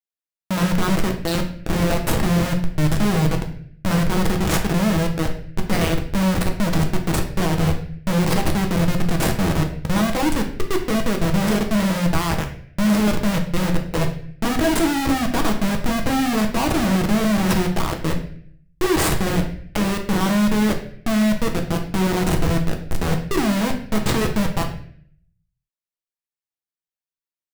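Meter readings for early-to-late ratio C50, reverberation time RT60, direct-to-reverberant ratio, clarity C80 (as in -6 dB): 8.5 dB, 0.55 s, 2.0 dB, 12.0 dB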